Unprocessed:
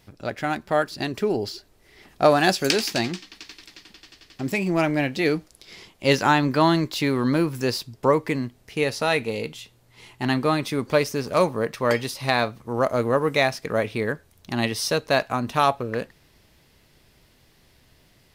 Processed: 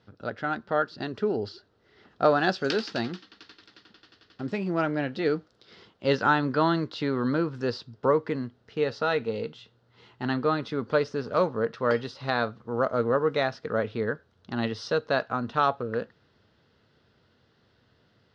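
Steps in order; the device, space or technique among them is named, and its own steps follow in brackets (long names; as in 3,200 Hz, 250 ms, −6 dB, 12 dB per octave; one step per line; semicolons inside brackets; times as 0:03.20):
guitar cabinet (loudspeaker in its box 89–4,600 Hz, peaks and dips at 100 Hz +6 dB, 220 Hz +4 dB, 470 Hz +6 dB, 1,400 Hz +9 dB, 2,300 Hz −9 dB)
level −6.5 dB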